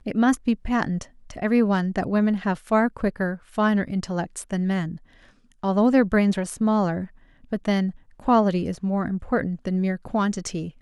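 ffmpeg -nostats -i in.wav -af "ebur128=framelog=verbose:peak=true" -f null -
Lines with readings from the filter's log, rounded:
Integrated loudness:
  I:         -23.7 LUFS
  Threshold: -34.0 LUFS
Loudness range:
  LRA:         2.1 LU
  Threshold: -43.9 LUFS
  LRA low:   -24.9 LUFS
  LRA high:  -22.8 LUFS
True peak:
  Peak:       -7.2 dBFS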